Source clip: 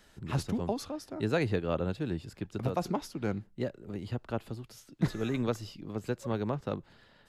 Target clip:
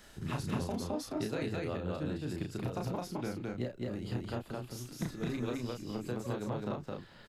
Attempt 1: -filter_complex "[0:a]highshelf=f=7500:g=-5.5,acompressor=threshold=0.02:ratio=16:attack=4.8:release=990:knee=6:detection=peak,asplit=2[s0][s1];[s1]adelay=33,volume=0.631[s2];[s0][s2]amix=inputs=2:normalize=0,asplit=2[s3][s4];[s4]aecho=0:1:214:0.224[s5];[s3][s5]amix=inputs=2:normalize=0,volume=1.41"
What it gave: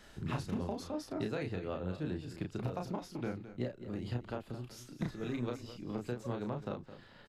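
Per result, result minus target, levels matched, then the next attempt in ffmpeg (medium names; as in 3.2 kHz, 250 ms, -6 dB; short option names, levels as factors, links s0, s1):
echo-to-direct -11.5 dB; 8 kHz band -4.5 dB
-filter_complex "[0:a]highshelf=f=7500:g=-5.5,acompressor=threshold=0.02:ratio=16:attack=4.8:release=990:knee=6:detection=peak,asplit=2[s0][s1];[s1]adelay=33,volume=0.631[s2];[s0][s2]amix=inputs=2:normalize=0,asplit=2[s3][s4];[s4]aecho=0:1:214:0.841[s5];[s3][s5]amix=inputs=2:normalize=0,volume=1.41"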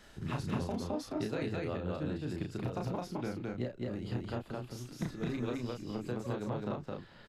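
8 kHz band -4.5 dB
-filter_complex "[0:a]highshelf=f=7500:g=4,acompressor=threshold=0.02:ratio=16:attack=4.8:release=990:knee=6:detection=peak,asplit=2[s0][s1];[s1]adelay=33,volume=0.631[s2];[s0][s2]amix=inputs=2:normalize=0,asplit=2[s3][s4];[s4]aecho=0:1:214:0.841[s5];[s3][s5]amix=inputs=2:normalize=0,volume=1.41"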